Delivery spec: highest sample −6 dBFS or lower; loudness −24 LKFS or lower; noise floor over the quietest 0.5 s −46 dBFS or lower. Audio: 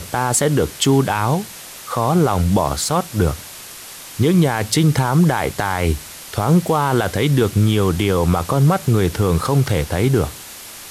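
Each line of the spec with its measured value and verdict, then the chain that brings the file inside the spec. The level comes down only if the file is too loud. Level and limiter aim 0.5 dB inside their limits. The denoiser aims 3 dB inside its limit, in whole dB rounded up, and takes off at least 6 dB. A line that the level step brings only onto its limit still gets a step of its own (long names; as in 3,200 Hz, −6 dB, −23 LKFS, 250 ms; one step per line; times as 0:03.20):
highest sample −5.0 dBFS: out of spec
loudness −17.5 LKFS: out of spec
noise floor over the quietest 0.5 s −36 dBFS: out of spec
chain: broadband denoise 6 dB, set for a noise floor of −36 dBFS
level −7 dB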